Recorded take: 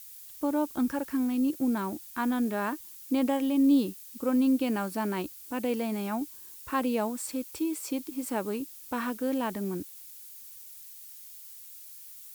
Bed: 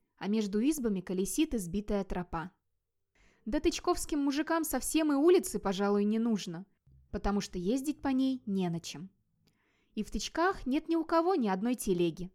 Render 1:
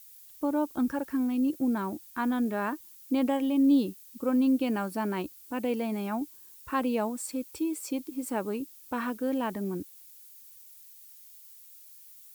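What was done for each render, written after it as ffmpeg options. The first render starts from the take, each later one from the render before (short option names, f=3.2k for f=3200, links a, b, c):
-af "afftdn=nr=6:nf=-47"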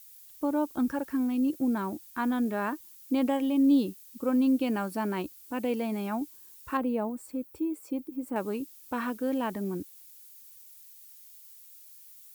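-filter_complex "[0:a]asettb=1/sr,asplit=3[a][b][c];[a]atrim=end=6.774[d];[b]atrim=start=6.77:end=8.36,asetpts=PTS-STARTPTS,afade=t=in:d=0.004:c=qsin,afade=t=out:st=1.586:d=0.004:c=qsin,equalizer=f=5.7k:w=0.31:g=-14[e];[c]atrim=start=8.356[f];[d][e]acrossfade=d=0.004:c1=hsin:c2=qsin[g];[g][f]acrossfade=d=0.004:c1=qsin:c2=hsin"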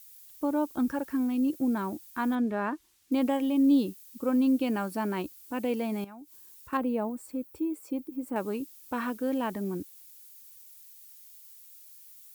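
-filter_complex "[0:a]asettb=1/sr,asplit=3[a][b][c];[a]atrim=end=2.354[d];[b]atrim=start=2.35:end=3.12,asetpts=PTS-STARTPTS,afade=t=in:d=0.004:c=qsin,afade=t=out:st=0.766:d=0.004:c=qsin,aemphasis=mode=reproduction:type=50fm[e];[c]atrim=start=3.116[f];[d][e]acrossfade=d=0.004:c1=hsin:c2=qsin[g];[g][f]acrossfade=d=0.004:c1=qsin:c2=hsin,asettb=1/sr,asplit=3[h][i][j];[h]atrim=end=6.044[k];[i]atrim=start=6.04:end=6.73,asetpts=PTS-STARTPTS,afade=t=in:d=0.004:c=qsin,afade=t=out:st=0.686:d=0.004:c=qsin,acompressor=threshold=-47dB:ratio=4:attack=3.2:release=140:knee=1:detection=peak[l];[j]atrim=start=6.726[m];[k][l]acrossfade=d=0.004:c1=hsin:c2=qsin[n];[n][m]acrossfade=d=0.004:c1=qsin:c2=hsin"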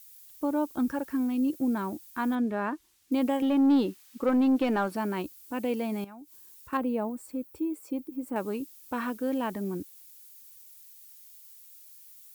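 -filter_complex "[0:a]asettb=1/sr,asplit=3[a][b][c];[a]atrim=end=3.424[d];[b]atrim=start=3.42:end=4.96,asetpts=PTS-STARTPTS,afade=t=in:d=0.004:c=qsin,afade=t=out:st=1.536:d=0.004:c=qsin,asplit=2[e][f];[f]highpass=f=720:p=1,volume=17dB,asoftclip=type=tanh:threshold=-15dB[g];[e][g]amix=inputs=2:normalize=0,lowpass=f=1.6k:p=1,volume=-6dB[h];[c]atrim=start=4.956[i];[d][h]acrossfade=d=0.004:c1=hsin:c2=qsin[j];[j][i]acrossfade=d=0.004:c1=qsin:c2=hsin"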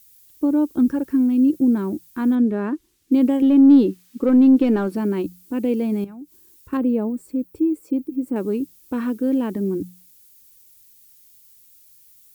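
-af "lowshelf=f=530:t=q:w=1.5:g=9,bandreject=f=60:t=h:w=6,bandreject=f=120:t=h:w=6,bandreject=f=180:t=h:w=6"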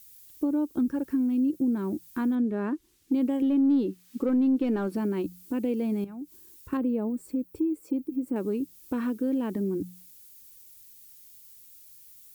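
-af "acompressor=threshold=-30dB:ratio=2"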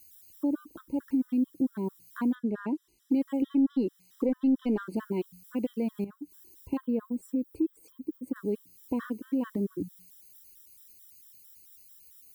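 -af "afftfilt=real='re*gt(sin(2*PI*4.5*pts/sr)*(1-2*mod(floor(b*sr/1024/1000),2)),0)':imag='im*gt(sin(2*PI*4.5*pts/sr)*(1-2*mod(floor(b*sr/1024/1000),2)),0)':win_size=1024:overlap=0.75"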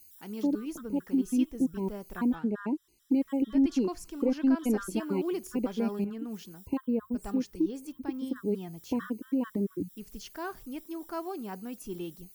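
-filter_complex "[1:a]volume=-8.5dB[a];[0:a][a]amix=inputs=2:normalize=0"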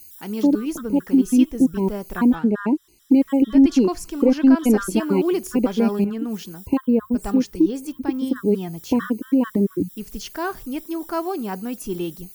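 -af "volume=11dB"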